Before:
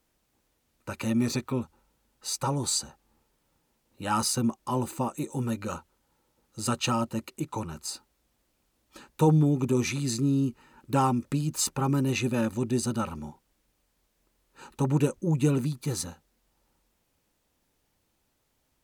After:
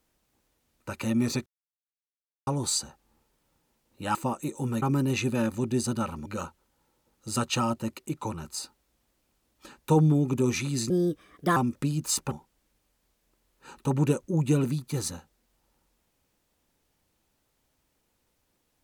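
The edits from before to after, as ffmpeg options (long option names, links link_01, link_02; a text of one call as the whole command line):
ffmpeg -i in.wav -filter_complex "[0:a]asplit=9[link_01][link_02][link_03][link_04][link_05][link_06][link_07][link_08][link_09];[link_01]atrim=end=1.46,asetpts=PTS-STARTPTS,afade=type=out:start_time=1.456:duration=0.004:curve=hsin[link_10];[link_02]atrim=start=1.46:end=2.47,asetpts=PTS-STARTPTS,volume=0[link_11];[link_03]atrim=start=2.47:end=4.152,asetpts=PTS-STARTPTS,afade=type=in:duration=0.004:curve=hsin[link_12];[link_04]atrim=start=4.898:end=5.572[link_13];[link_05]atrim=start=11.808:end=13.252[link_14];[link_06]atrim=start=5.568:end=10.214[link_15];[link_07]atrim=start=10.21:end=11.06,asetpts=PTS-STARTPTS,asetrate=56448,aresample=44100,atrim=end_sample=29285,asetpts=PTS-STARTPTS[link_16];[link_08]atrim=start=11.056:end=11.812[link_17];[link_09]atrim=start=13.248[link_18];[link_10][link_11][link_12]concat=n=3:v=0:a=1[link_19];[link_19][link_13]acrossfade=duration=0.004:curve1=hsin:curve2=hsin[link_20];[link_20][link_14]acrossfade=duration=0.004:curve1=hsin:curve2=hsin[link_21];[link_21][link_15]acrossfade=duration=0.004:curve1=hsin:curve2=hsin[link_22];[link_22][link_16]acrossfade=duration=0.004:curve1=hsin:curve2=hsin[link_23];[link_23][link_17]acrossfade=duration=0.004:curve1=hsin:curve2=hsin[link_24];[link_24][link_18]acrossfade=duration=0.004:curve1=hsin:curve2=hsin" out.wav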